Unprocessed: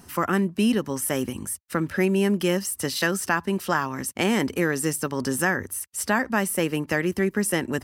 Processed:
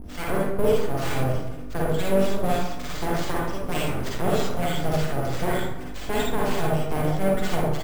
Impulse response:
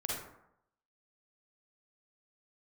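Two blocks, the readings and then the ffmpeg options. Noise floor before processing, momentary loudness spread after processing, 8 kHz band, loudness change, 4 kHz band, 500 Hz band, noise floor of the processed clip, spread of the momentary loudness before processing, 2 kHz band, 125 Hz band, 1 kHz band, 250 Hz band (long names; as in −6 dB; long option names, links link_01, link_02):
−51 dBFS, 7 LU, −10.0 dB, −1.5 dB, −1.5 dB, +1.5 dB, −32 dBFS, 6 LU, −6.5 dB, +3.0 dB, +0.5 dB, −4.0 dB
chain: -filter_complex "[0:a]lowshelf=frequency=470:gain=5,aeval=exprs='val(0)+0.0251*(sin(2*PI*50*n/s)+sin(2*PI*2*50*n/s)/2+sin(2*PI*3*50*n/s)/3+sin(2*PI*4*50*n/s)/4+sin(2*PI*5*50*n/s)/5)':channel_layout=same,acrossover=split=1000[link_01][link_02];[link_01]aeval=exprs='val(0)*(1-1/2+1/2*cos(2*PI*3.3*n/s))':channel_layout=same[link_03];[link_02]aeval=exprs='val(0)*(1-1/2-1/2*cos(2*PI*3.3*n/s))':channel_layout=same[link_04];[link_03][link_04]amix=inputs=2:normalize=0,acrusher=samples=4:mix=1:aa=0.000001,aeval=exprs='abs(val(0))':channel_layout=same,aecho=1:1:138|276|414|552|690:0.112|0.0662|0.0391|0.023|0.0136[link_05];[1:a]atrim=start_sample=2205[link_06];[link_05][link_06]afir=irnorm=-1:irlink=0"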